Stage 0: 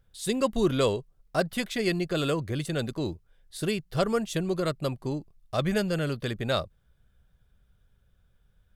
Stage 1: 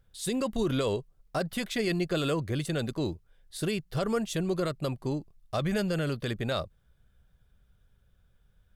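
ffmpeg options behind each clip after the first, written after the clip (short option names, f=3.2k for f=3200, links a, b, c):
-af "alimiter=limit=-19.5dB:level=0:latency=1:release=34"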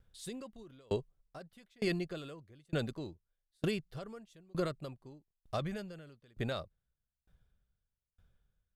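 -af "highshelf=f=8.7k:g=-5.5,aeval=exprs='val(0)*pow(10,-34*if(lt(mod(1.1*n/s,1),2*abs(1.1)/1000),1-mod(1.1*n/s,1)/(2*abs(1.1)/1000),(mod(1.1*n/s,1)-2*abs(1.1)/1000)/(1-2*abs(1.1)/1000))/20)':c=same,volume=-1dB"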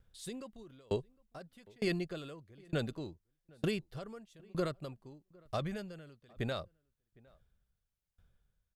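-filter_complex "[0:a]asplit=2[a][b];[b]adelay=758,volume=-26dB,highshelf=f=4k:g=-17.1[c];[a][c]amix=inputs=2:normalize=0"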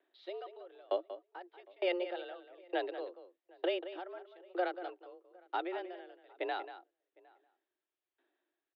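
-filter_complex "[0:a]asplit=2[a][b];[b]adelay=186.6,volume=-12dB,highshelf=f=4k:g=-4.2[c];[a][c]amix=inputs=2:normalize=0,highpass=f=170:t=q:w=0.5412,highpass=f=170:t=q:w=1.307,lowpass=f=3.4k:t=q:w=0.5176,lowpass=f=3.4k:t=q:w=0.7071,lowpass=f=3.4k:t=q:w=1.932,afreqshift=180,volume=1dB"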